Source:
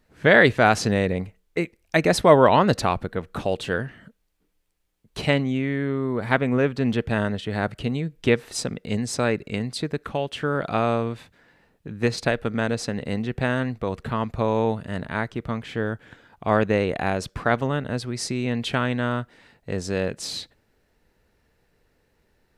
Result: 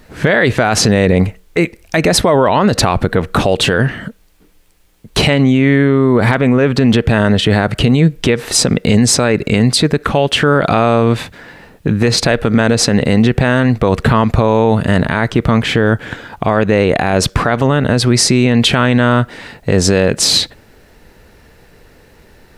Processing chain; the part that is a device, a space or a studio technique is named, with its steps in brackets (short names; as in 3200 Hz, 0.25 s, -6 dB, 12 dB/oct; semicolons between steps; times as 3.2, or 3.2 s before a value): loud club master (compressor 2:1, threshold -25 dBFS, peak gain reduction 9.5 dB; hard clip -11 dBFS, distortion -48 dB; maximiser +22.5 dB); gain -1 dB